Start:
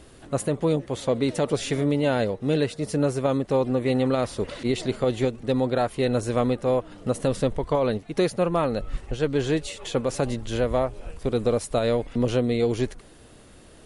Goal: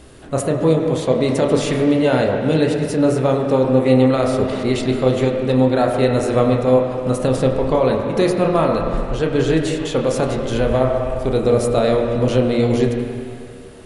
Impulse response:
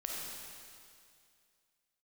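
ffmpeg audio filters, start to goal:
-filter_complex "[0:a]asplit=2[link_01][link_02];[1:a]atrim=start_sample=2205,lowpass=2600,adelay=31[link_03];[link_02][link_03]afir=irnorm=-1:irlink=0,volume=-1.5dB[link_04];[link_01][link_04]amix=inputs=2:normalize=0,volume=4.5dB"

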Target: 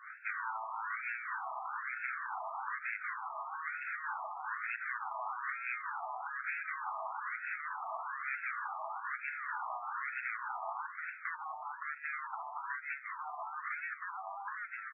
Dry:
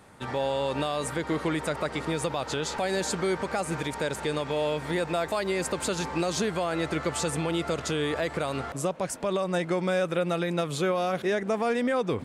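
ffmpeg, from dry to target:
ffmpeg -i in.wav -filter_complex "[0:a]acrossover=split=570[link_01][link_02];[link_01]aeval=exprs='val(0)*(1-0.7/2+0.7/2*cos(2*PI*6.1*n/s))':channel_layout=same[link_03];[link_02]aeval=exprs='val(0)*(1-0.7/2-0.7/2*cos(2*PI*6.1*n/s))':channel_layout=same[link_04];[link_03][link_04]amix=inputs=2:normalize=0,asplit=5[link_05][link_06][link_07][link_08][link_09];[link_06]adelay=406,afreqshift=-33,volume=-18dB[link_10];[link_07]adelay=812,afreqshift=-66,volume=-24.7dB[link_11];[link_08]adelay=1218,afreqshift=-99,volume=-31.5dB[link_12];[link_09]adelay=1624,afreqshift=-132,volume=-38.2dB[link_13];[link_05][link_10][link_11][link_12][link_13]amix=inputs=5:normalize=0,asoftclip=type=tanh:threshold=-29.5dB,acompressor=threshold=-38dB:ratio=6,afftfilt=real='re*lt(hypot(re,im),0.0141)':imag='im*lt(hypot(re,im),0.0141)':win_size=1024:overlap=0.75,aecho=1:1:7.4:0.4,bandreject=frequency=192.1:width_type=h:width=4,bandreject=frequency=384.2:width_type=h:width=4,bandreject=frequency=576.3:width_type=h:width=4,bandreject=frequency=768.4:width_type=h:width=4,bandreject=frequency=960.5:width_type=h:width=4,asetrate=36162,aresample=44100,afftfilt=real='re*between(b*sr/1024,890*pow(1900/890,0.5+0.5*sin(2*PI*1.1*pts/sr))/1.41,890*pow(1900/890,0.5+0.5*sin(2*PI*1.1*pts/sr))*1.41)':imag='im*between(b*sr/1024,890*pow(1900/890,0.5+0.5*sin(2*PI*1.1*pts/sr))/1.41,890*pow(1900/890,0.5+0.5*sin(2*PI*1.1*pts/sr))*1.41)':win_size=1024:overlap=0.75,volume=15.5dB" out.wav

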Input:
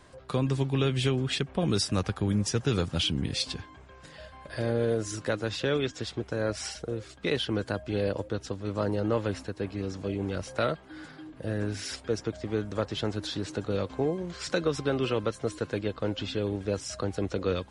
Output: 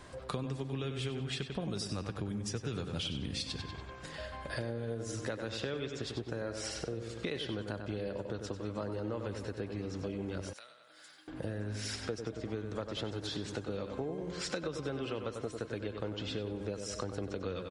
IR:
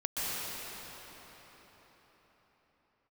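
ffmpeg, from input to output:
-filter_complex "[0:a]asplit=2[link_01][link_02];[link_02]adelay=95,lowpass=frequency=4700:poles=1,volume=-7.5dB,asplit=2[link_03][link_04];[link_04]adelay=95,lowpass=frequency=4700:poles=1,volume=0.5,asplit=2[link_05][link_06];[link_06]adelay=95,lowpass=frequency=4700:poles=1,volume=0.5,asplit=2[link_07][link_08];[link_08]adelay=95,lowpass=frequency=4700:poles=1,volume=0.5,asplit=2[link_09][link_10];[link_10]adelay=95,lowpass=frequency=4700:poles=1,volume=0.5,asplit=2[link_11][link_12];[link_12]adelay=95,lowpass=frequency=4700:poles=1,volume=0.5[link_13];[link_01][link_03][link_05][link_07][link_09][link_11][link_13]amix=inputs=7:normalize=0,acompressor=threshold=-38dB:ratio=6,asettb=1/sr,asplit=3[link_14][link_15][link_16];[link_14]atrim=end=10.534[link_17];[link_15]atrim=start=10.53:end=11.28,asetpts=PTS-STARTPTS,afade=type=in:duration=0.004:curve=qsin,afade=type=out:start_time=0.746:duration=0.004:curve=qsin,aderivative[link_18];[link_16]atrim=start=11.276[link_19];[link_17][link_18]acrossfade=duration=0.004:curve1=hsin:curve2=qsin[link_20];[link_20][link_19]acrossfade=duration=0.004:curve1=qsin:curve2=hsin,volume=3dB"

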